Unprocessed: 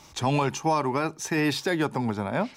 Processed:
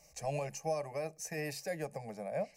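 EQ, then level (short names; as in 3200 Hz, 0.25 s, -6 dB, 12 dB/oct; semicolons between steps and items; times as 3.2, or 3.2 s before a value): fixed phaser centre 370 Hz, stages 6; fixed phaser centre 940 Hz, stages 6; -4.5 dB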